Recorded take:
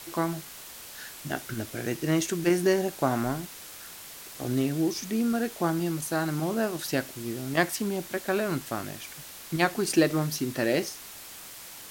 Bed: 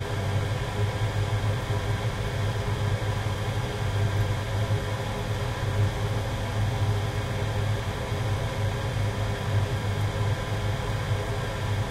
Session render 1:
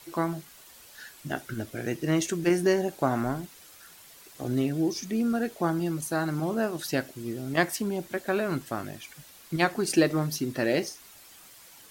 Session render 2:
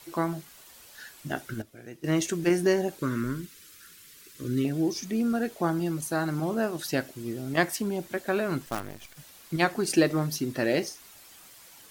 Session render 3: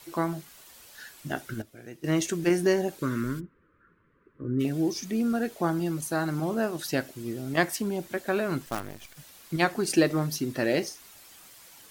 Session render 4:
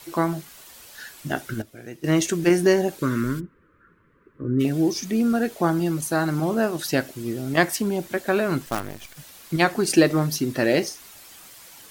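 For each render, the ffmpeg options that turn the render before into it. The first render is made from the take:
-af "afftdn=nr=9:nf=-44"
-filter_complex "[0:a]asettb=1/sr,asplit=3[s0][s1][s2];[s0]atrim=end=2.984[s3];[s1]atrim=start=2.98:end=4.65,asetpts=PTS-STARTPTS,afade=t=in:d=0.004:c=qsin,afade=t=out:st=1.666:d=0.004:c=qsin,asuperstop=centerf=750:order=4:qfactor=0.92[s4];[s2]atrim=start=4.646[s5];[s3][s4]acrossfade=d=0.004:c1=hsin:c2=qsin[s6];[s6][s5]acrossfade=d=0.004:c1=qsin:c2=hsin,asettb=1/sr,asplit=3[s7][s8][s9];[s7]atrim=end=8.664[s10];[s8]atrim=start=8.66:end=9.17,asetpts=PTS-STARTPTS,afade=t=in:d=0.004:c=qsin,afade=t=out:st=0.506:d=0.004:c=qsin,acrusher=bits=6:dc=4:mix=0:aa=0.000001[s11];[s9]atrim=start=9.166[s12];[s10][s11]acrossfade=d=0.004:c1=hsin:c2=qsin[s13];[s13][s12]acrossfade=d=0.004:c1=qsin:c2=hsin,asplit=3[s14][s15][s16];[s14]atrim=end=1.62,asetpts=PTS-STARTPTS,afade=t=out:st=1.44:d=0.18:c=log:silence=0.223872[s17];[s15]atrim=start=1.62:end=2.04,asetpts=PTS-STARTPTS,volume=0.224[s18];[s16]atrim=start=2.04,asetpts=PTS-STARTPTS,afade=t=in:d=0.18:c=log:silence=0.223872[s19];[s17][s18][s19]concat=n=3:v=0:a=1"
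-filter_complex "[0:a]asplit=3[s0][s1][s2];[s0]afade=t=out:st=3.39:d=0.02[s3];[s1]lowpass=f=1300:w=0.5412,lowpass=f=1300:w=1.3066,afade=t=in:st=3.39:d=0.02,afade=t=out:st=4.59:d=0.02[s4];[s2]afade=t=in:st=4.59:d=0.02[s5];[s3][s4][s5]amix=inputs=3:normalize=0"
-af "volume=1.88,alimiter=limit=0.708:level=0:latency=1"

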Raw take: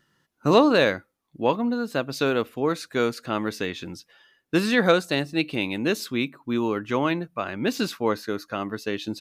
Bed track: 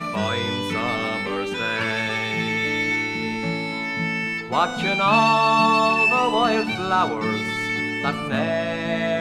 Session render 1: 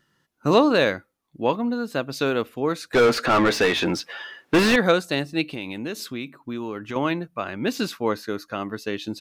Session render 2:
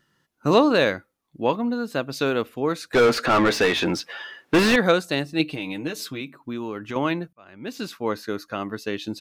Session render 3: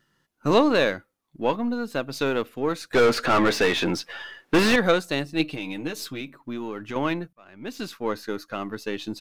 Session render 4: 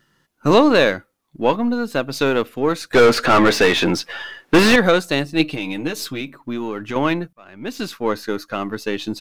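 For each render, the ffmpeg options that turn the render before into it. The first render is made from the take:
-filter_complex "[0:a]asettb=1/sr,asplit=3[s0][s1][s2];[s0]atrim=end=2.934[s3];[s1]atrim=start=2.93:end=4.76,asetpts=PTS-STARTPTS,afade=t=in:d=0.004:c=qsin,afade=t=out:st=1.826:d=0.004:c=qsin,asplit=2[s4][s5];[s5]highpass=f=720:p=1,volume=31.6,asoftclip=type=tanh:threshold=0.376[s6];[s4][s6]amix=inputs=2:normalize=0,lowpass=f=1800:p=1,volume=0.501[s7];[s2]atrim=start=4.756[s8];[s3][s7]acrossfade=d=0.004:c1=hsin:c2=qsin[s9];[s9][s8]acrossfade=d=0.004:c1=qsin:c2=hsin,asettb=1/sr,asplit=3[s10][s11][s12];[s10]atrim=end=5.484[s13];[s11]atrim=start=5.48:end=6.96,asetpts=PTS-STARTPTS,afade=t=in:d=0.004:c=qsin,afade=t=out:st=1.476:d=0.004:c=qsin,acompressor=threshold=0.0398:ratio=3:attack=3.2:release=140:knee=1:detection=peak[s14];[s12]atrim=start=6.956[s15];[s13][s14]acrossfade=d=0.004:c1=hsin:c2=qsin[s16];[s16][s15]acrossfade=d=0.004:c1=qsin:c2=hsin"
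-filter_complex "[0:a]asettb=1/sr,asplit=3[s0][s1][s2];[s0]atrim=end=5.394[s3];[s1]atrim=start=5.39:end=6.21,asetpts=PTS-STARTPTS,afade=t=in:d=0.004:c=qsin,afade=t=out:st=0.816:d=0.004:c=qsin,aecho=1:1:6.5:0.62,atrim=end_sample=36162[s4];[s2]atrim=start=6.206[s5];[s3][s4]acrossfade=d=0.004:c1=hsin:c2=qsin[s6];[s6][s5]acrossfade=d=0.004:c1=qsin:c2=hsin,asplit=2[s7][s8];[s7]atrim=end=7.33,asetpts=PTS-STARTPTS,afade=t=out:st=7.326:d=0.004:c=hsin[s9];[s8]atrim=start=7.33,asetpts=PTS-STARTPTS,afade=t=in:d=0.95[s10];[s9][s10]concat=n=2:v=0:a=1"
-af "aeval=exprs='if(lt(val(0),0),0.708*val(0),val(0))':c=same"
-af "volume=2.11,alimiter=limit=0.708:level=0:latency=1"

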